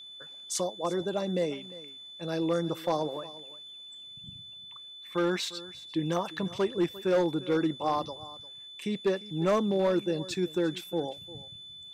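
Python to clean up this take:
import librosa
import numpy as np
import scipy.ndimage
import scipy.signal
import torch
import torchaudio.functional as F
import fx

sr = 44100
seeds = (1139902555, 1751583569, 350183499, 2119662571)

y = fx.fix_declip(x, sr, threshold_db=-20.0)
y = fx.notch(y, sr, hz=3500.0, q=30.0)
y = fx.fix_echo_inverse(y, sr, delay_ms=350, level_db=-18.5)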